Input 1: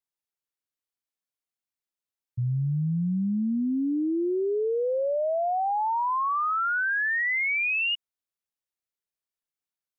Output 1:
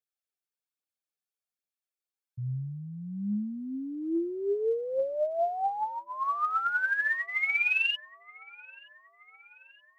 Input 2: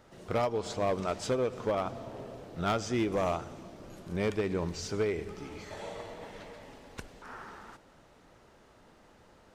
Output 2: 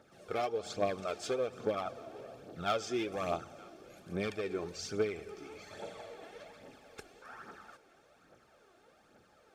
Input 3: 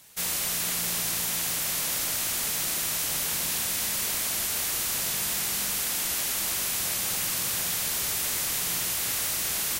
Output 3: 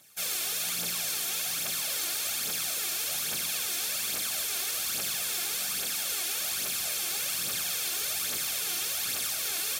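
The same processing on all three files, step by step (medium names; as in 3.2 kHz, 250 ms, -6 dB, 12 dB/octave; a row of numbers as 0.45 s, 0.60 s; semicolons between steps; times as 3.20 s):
bass shelf 190 Hz -8.5 dB; comb of notches 980 Hz; phaser 1.2 Hz, delay 3 ms, feedback 52%; dynamic bell 3.7 kHz, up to +4 dB, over -43 dBFS, Q 1.1; on a send: feedback echo behind a band-pass 925 ms, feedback 50%, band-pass 1.4 kHz, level -22 dB; on the sum: trim -4 dB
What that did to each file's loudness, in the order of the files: -3.5 LU, -4.0 LU, -3.0 LU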